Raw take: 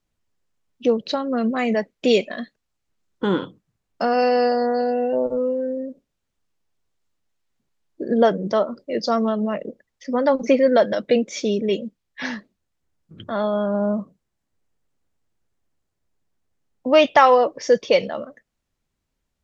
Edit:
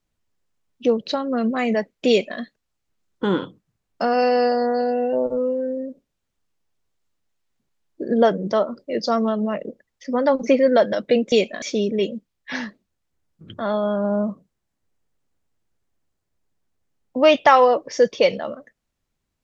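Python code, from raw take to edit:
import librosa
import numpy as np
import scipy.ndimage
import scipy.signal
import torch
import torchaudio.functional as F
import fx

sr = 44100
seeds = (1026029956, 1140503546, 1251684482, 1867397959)

y = fx.edit(x, sr, fx.duplicate(start_s=2.09, length_s=0.3, to_s=11.32), tone=tone)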